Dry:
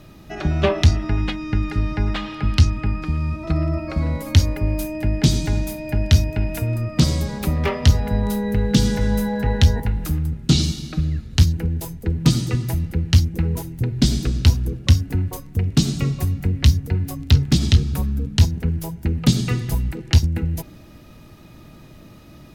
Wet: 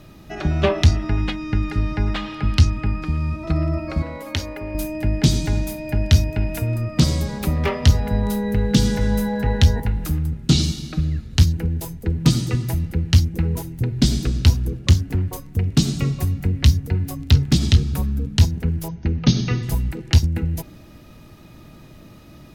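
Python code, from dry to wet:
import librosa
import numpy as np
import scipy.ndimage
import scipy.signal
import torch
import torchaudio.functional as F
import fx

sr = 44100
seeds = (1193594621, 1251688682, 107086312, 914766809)

y = fx.bass_treble(x, sr, bass_db=-14, treble_db=-7, at=(4.02, 4.75))
y = fx.doppler_dist(y, sr, depth_ms=0.65, at=(14.81, 15.31))
y = fx.brickwall_lowpass(y, sr, high_hz=6600.0, at=(18.88, 19.63))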